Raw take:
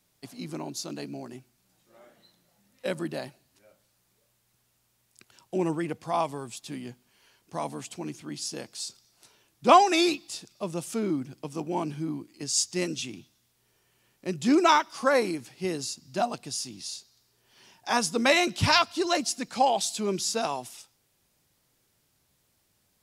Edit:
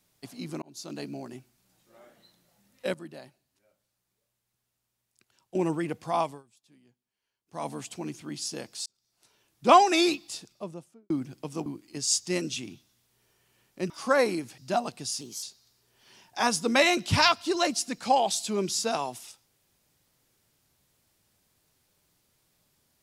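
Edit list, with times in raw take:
0:00.62–0:00.99: fade in
0:02.94–0:05.55: clip gain −10.5 dB
0:06.22–0:07.67: duck −23.5 dB, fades 0.21 s
0:08.86–0:09.77: fade in
0:10.29–0:11.10: fade out and dull
0:11.66–0:12.12: remove
0:14.36–0:14.86: remove
0:15.54–0:16.04: remove
0:16.67–0:16.93: play speed 119%

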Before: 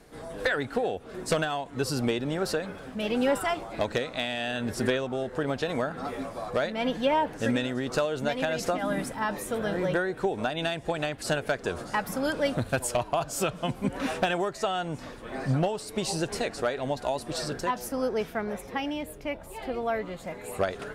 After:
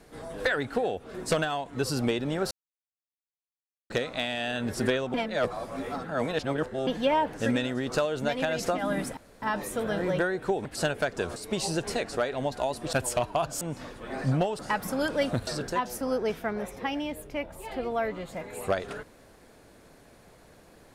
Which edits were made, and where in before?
0:02.51–0:03.90: silence
0:05.14–0:06.87: reverse
0:09.17: splice in room tone 0.25 s
0:10.40–0:11.12: remove
0:11.83–0:12.71: swap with 0:15.81–0:17.38
0:13.39–0:14.83: remove

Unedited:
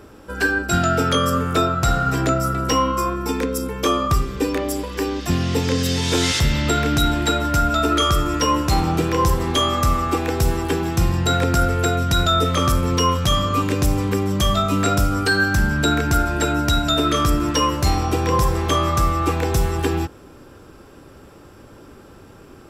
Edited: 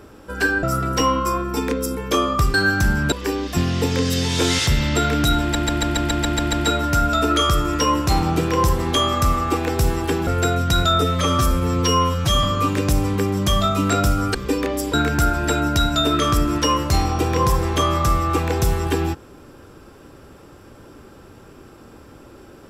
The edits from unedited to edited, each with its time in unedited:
0:00.63–0:02.35: remove
0:04.26–0:04.85: swap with 0:15.28–0:15.86
0:07.14: stutter 0.14 s, 9 plays
0:10.88–0:11.68: remove
0:12.42–0:13.37: time-stretch 1.5×

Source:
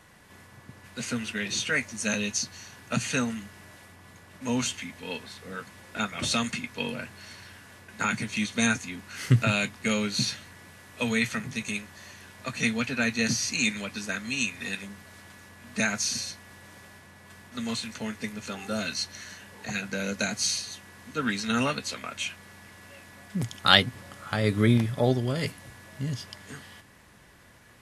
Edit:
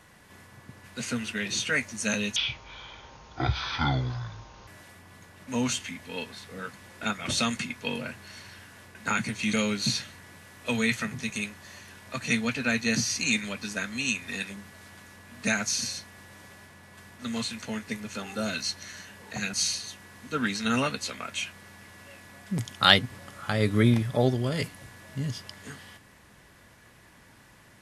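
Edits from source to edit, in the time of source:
0:02.36–0:03.61: play speed 54%
0:08.47–0:09.86: remove
0:19.86–0:20.37: remove

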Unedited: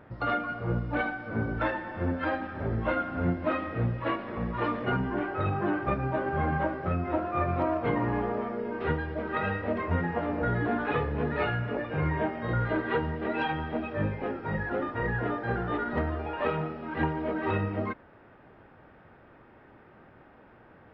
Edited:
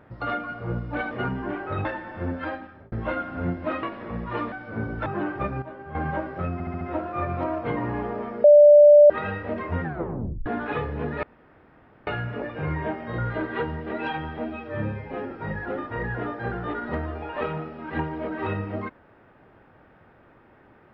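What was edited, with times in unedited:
0:01.11–0:01.65: swap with 0:04.79–0:05.53
0:02.18–0:02.72: fade out
0:03.63–0:04.10: remove
0:06.09–0:06.42: clip gain −10.5 dB
0:07.00: stutter 0.07 s, 5 plays
0:08.63–0:09.29: beep over 589 Hz −8 dBFS
0:10.02: tape stop 0.63 s
0:11.42: splice in room tone 0.84 s
0:13.73–0:14.35: time-stretch 1.5×

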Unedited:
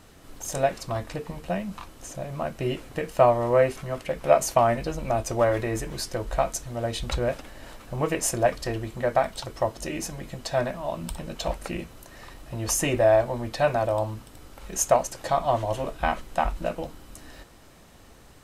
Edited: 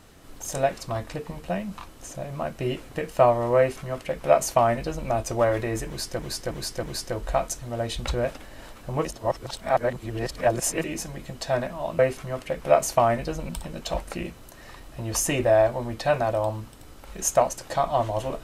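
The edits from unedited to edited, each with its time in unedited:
0:03.58–0:05.08: duplicate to 0:11.03
0:05.87–0:06.19: repeat, 4 plays
0:08.09–0:09.88: reverse

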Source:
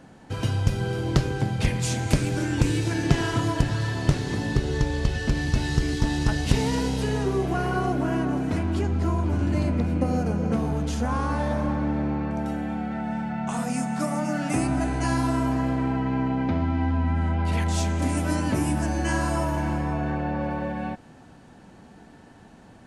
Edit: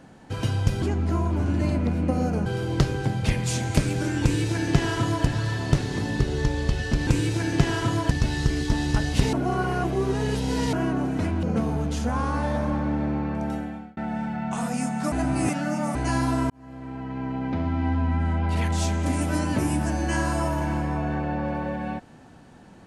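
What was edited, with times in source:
0:02.58–0:03.62: duplicate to 0:05.43
0:06.65–0:08.05: reverse
0:08.75–0:10.39: move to 0:00.82
0:12.49–0:12.93: fade out
0:14.08–0:14.91: reverse
0:15.46–0:16.84: fade in

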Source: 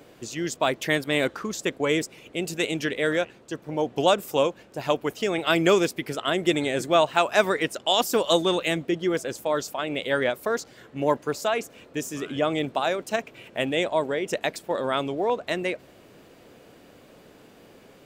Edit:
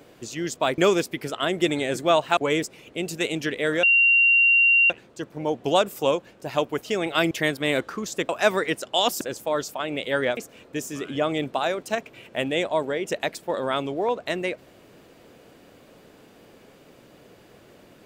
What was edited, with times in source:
0:00.78–0:01.76: swap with 0:05.63–0:07.22
0:03.22: insert tone 2,760 Hz −14 dBFS 1.07 s
0:08.14–0:09.20: remove
0:10.36–0:11.58: remove

